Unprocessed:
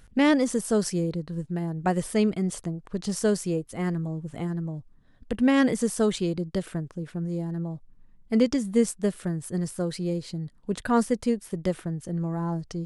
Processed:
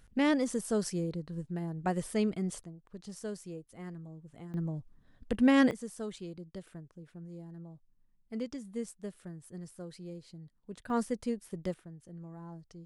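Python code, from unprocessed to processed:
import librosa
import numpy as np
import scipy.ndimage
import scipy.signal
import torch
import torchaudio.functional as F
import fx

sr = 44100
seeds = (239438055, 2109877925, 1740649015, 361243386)

y = fx.gain(x, sr, db=fx.steps((0.0, -7.0), (2.64, -16.0), (4.54, -3.0), (5.71, -16.0), (10.9, -9.0), (11.74, -17.5)))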